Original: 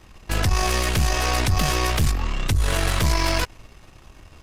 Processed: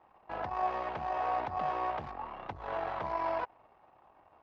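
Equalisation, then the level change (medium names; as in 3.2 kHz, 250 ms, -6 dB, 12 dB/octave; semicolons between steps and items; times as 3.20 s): band-pass filter 810 Hz, Q 3; distance through air 230 m; 0.0 dB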